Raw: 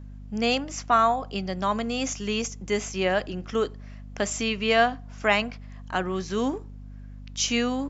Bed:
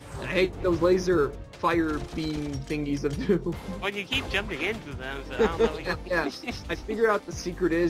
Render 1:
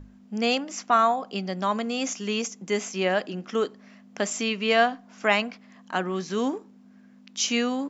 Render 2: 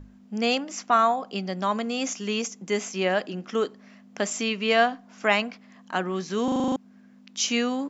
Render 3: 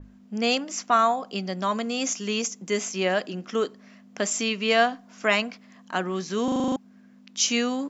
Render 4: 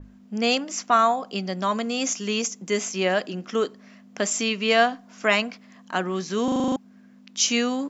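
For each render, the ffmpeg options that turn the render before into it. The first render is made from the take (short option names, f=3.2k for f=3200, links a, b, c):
-af "bandreject=f=50:t=h:w=6,bandreject=f=100:t=h:w=6,bandreject=f=150:t=h:w=6"
-filter_complex "[0:a]asplit=9[a][b][c][d][e][f][g][h][i];[a]atrim=end=6.482[j];[b]atrim=start=6.438:end=6.482[k];[c]atrim=start=6.438:end=6.482[l];[d]atrim=start=6.438:end=6.482[m];[e]atrim=start=6.438:end=6.482[n];[f]atrim=start=6.438:end=6.482[o];[g]atrim=start=6.438:end=6.482[p];[h]atrim=start=6.438:end=6.482[q];[i]atrim=start=6.758[r];[j][k]acrossfade=d=0.004:c1=hsin:c2=hsin[s];[s][l]acrossfade=d=0.004:c1=hsin:c2=hsin[t];[t][m]acrossfade=d=0.004:c1=hsin:c2=hsin[u];[u][n]acrossfade=d=0.004:c1=hsin:c2=hsin[v];[v][o]acrossfade=d=0.004:c1=hsin:c2=hsin[w];[w][p]acrossfade=d=0.004:c1=hsin:c2=hsin[x];[x][q]acrossfade=d=0.004:c1=hsin:c2=hsin[y];[y][r]acrossfade=d=0.004:c1=hsin:c2=hsin"
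-af "bandreject=f=820:w=17,adynamicequalizer=threshold=0.0141:dfrequency=4100:dqfactor=0.7:tfrequency=4100:tqfactor=0.7:attack=5:release=100:ratio=0.375:range=2.5:mode=boostabove:tftype=highshelf"
-af "volume=1.5dB"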